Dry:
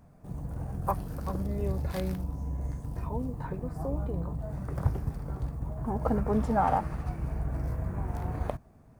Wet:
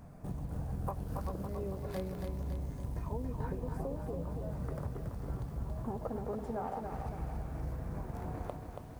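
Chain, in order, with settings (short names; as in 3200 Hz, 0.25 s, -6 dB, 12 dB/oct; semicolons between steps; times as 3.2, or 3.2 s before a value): dynamic EQ 460 Hz, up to +6 dB, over -42 dBFS, Q 1; compressor 16:1, threshold -40 dBFS, peak gain reduction 22 dB; lo-fi delay 0.279 s, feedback 55%, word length 11-bit, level -5 dB; gain +4.5 dB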